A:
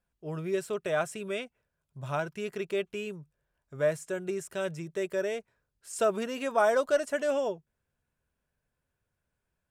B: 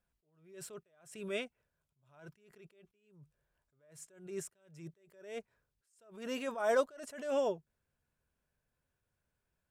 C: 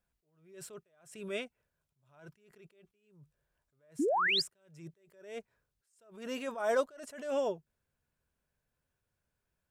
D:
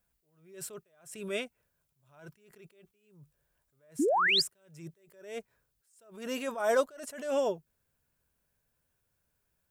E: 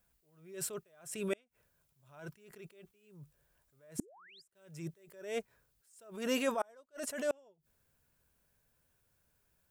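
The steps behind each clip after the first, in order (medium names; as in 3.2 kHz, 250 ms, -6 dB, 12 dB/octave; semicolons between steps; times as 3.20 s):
attacks held to a fixed rise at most 100 dB/s; trim -2 dB
painted sound rise, 3.99–4.42 s, 250–5300 Hz -29 dBFS
treble shelf 9.6 kHz +10.5 dB; trim +3 dB
inverted gate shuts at -25 dBFS, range -36 dB; trim +3 dB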